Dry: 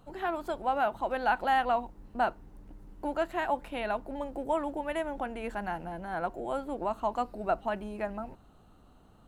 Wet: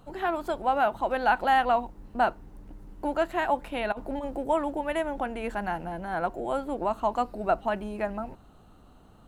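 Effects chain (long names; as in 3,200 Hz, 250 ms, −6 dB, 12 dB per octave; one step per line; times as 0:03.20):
0:03.92–0:04.36: compressor whose output falls as the input rises −36 dBFS, ratio −0.5
level +4 dB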